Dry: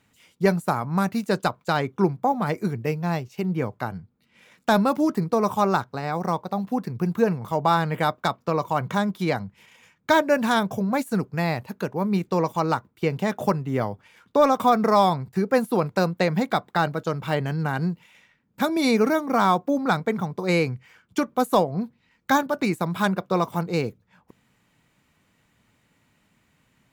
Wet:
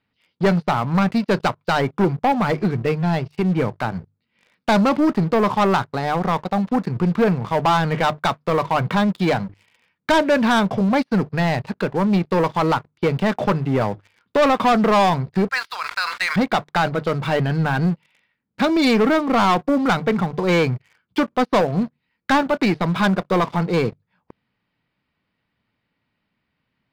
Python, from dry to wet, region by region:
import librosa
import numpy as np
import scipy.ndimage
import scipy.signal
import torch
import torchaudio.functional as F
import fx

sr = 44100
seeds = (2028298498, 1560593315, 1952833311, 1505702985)

y = fx.chain(x, sr, fx.highpass(hz=1300.0, slope=24),
    fx.sustainer(db_per_s=49.0), at=(15.49, 16.36))
y = scipy.signal.sosfilt(scipy.signal.ellip(4, 1.0, 40, 4900.0, 'lowpass', fs=sr, output='sos'), y)
y = fx.hum_notches(y, sr, base_hz=50, count=3)
y = fx.leveller(y, sr, passes=3)
y = F.gain(torch.from_numpy(y), -2.5).numpy()